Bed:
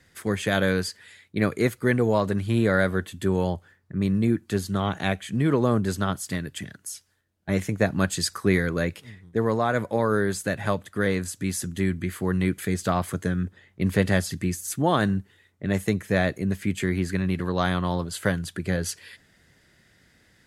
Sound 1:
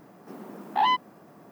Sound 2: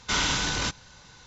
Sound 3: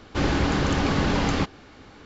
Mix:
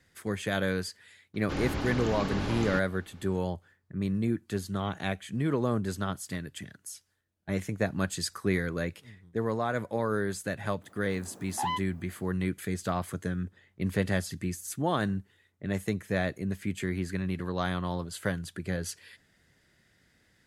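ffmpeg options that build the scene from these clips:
-filter_complex "[0:a]volume=0.473[s0];[3:a]atrim=end=2.05,asetpts=PTS-STARTPTS,volume=0.316,afade=t=in:d=0.004:c=hsin,afade=t=out:st=2.046:d=0.004:c=hsin,adelay=1340[s1];[1:a]atrim=end=1.51,asetpts=PTS-STARTPTS,volume=0.355,afade=t=in:d=0.004:c=hsin,afade=t=out:st=1.506:d=0.004:c=hsin,adelay=477162S[s2];[s0][s1][s2]amix=inputs=3:normalize=0"

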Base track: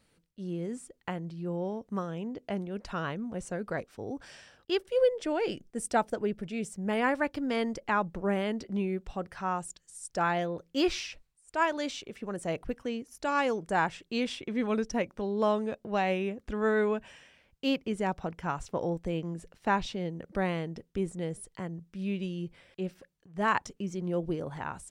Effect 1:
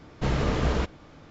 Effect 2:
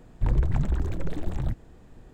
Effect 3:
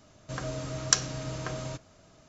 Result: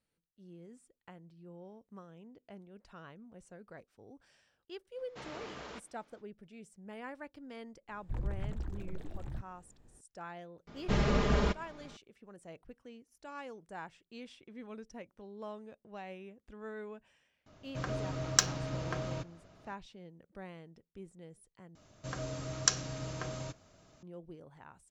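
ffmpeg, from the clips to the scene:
-filter_complex "[1:a]asplit=2[s0][s1];[3:a]asplit=2[s2][s3];[0:a]volume=0.133[s4];[s0]highpass=f=730:p=1[s5];[s1]aecho=1:1:4.9:0.64[s6];[s2]adynamicsmooth=sensitivity=3.5:basefreq=4800[s7];[s4]asplit=2[s8][s9];[s8]atrim=end=21.754[s10];[s3]atrim=end=2.28,asetpts=PTS-STARTPTS,volume=0.596[s11];[s9]atrim=start=24.026[s12];[s5]atrim=end=1.3,asetpts=PTS-STARTPTS,volume=0.211,afade=t=in:d=0.05,afade=t=out:st=1.25:d=0.05,adelay=4940[s13];[2:a]atrim=end=2.13,asetpts=PTS-STARTPTS,volume=0.211,afade=t=in:d=0.004:c=hsin,afade=t=out:st=2.126:d=0.004:c=hsin,adelay=7880[s14];[s6]atrim=end=1.3,asetpts=PTS-STARTPTS,volume=0.596,afade=t=in:d=0.004:c=hsin,afade=t=out:st=1.296:d=0.004:c=hsin,adelay=10670[s15];[s7]atrim=end=2.28,asetpts=PTS-STARTPTS,volume=0.841,afade=t=in:d=0.004:c=hsin,afade=t=out:st=2.276:d=0.004:c=hsin,adelay=17460[s16];[s10][s11]acrossfade=d=0.004:c1=hsin:c2=hsin[s17];[s17][s12]acrossfade=d=0.004:c1=hsin:c2=hsin[s18];[s18][s13][s14][s15][s16]amix=inputs=5:normalize=0"

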